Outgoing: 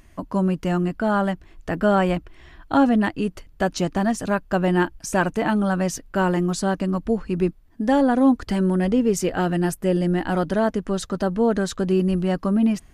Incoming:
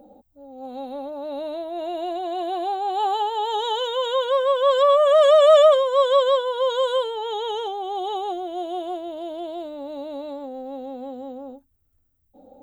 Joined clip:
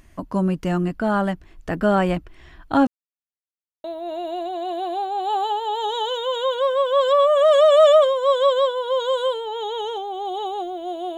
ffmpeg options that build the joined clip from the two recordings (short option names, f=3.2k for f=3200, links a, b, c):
-filter_complex "[0:a]apad=whole_dur=11.17,atrim=end=11.17,asplit=2[a][b];[a]atrim=end=2.87,asetpts=PTS-STARTPTS,afade=t=out:st=2.866:d=0.004:c=hsin[c];[b]atrim=start=2.87:end=3.84,asetpts=PTS-STARTPTS,volume=0[d];[1:a]atrim=start=1.54:end=8.87,asetpts=PTS-STARTPTS,afade=t=in:d=0.004:c=hsin[e];[c][d][e]concat=n=3:v=0:a=1"